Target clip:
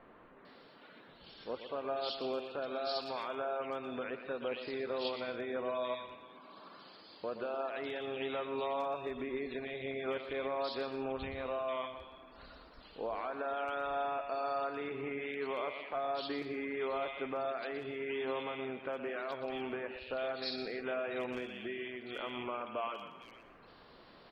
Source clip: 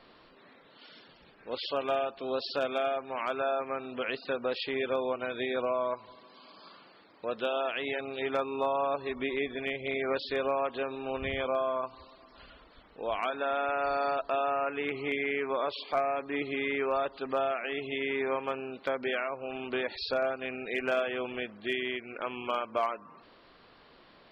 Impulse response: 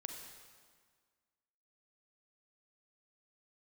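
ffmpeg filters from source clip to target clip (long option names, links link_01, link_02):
-filter_complex "[0:a]alimiter=level_in=4dB:limit=-24dB:level=0:latency=1:release=181,volume=-4dB,acrossover=split=2300[link_01][link_02];[link_02]adelay=450[link_03];[link_01][link_03]amix=inputs=2:normalize=0,asplit=2[link_04][link_05];[1:a]atrim=start_sample=2205,afade=type=out:start_time=0.21:duration=0.01,atrim=end_sample=9702,adelay=120[link_06];[link_05][link_06]afir=irnorm=-1:irlink=0,volume=-6dB[link_07];[link_04][link_07]amix=inputs=2:normalize=0"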